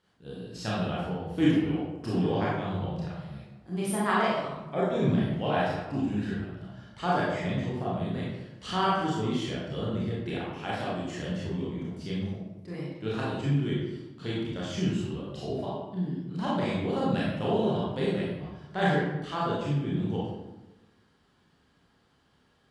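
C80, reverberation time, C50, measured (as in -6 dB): 2.5 dB, 1.0 s, -1.0 dB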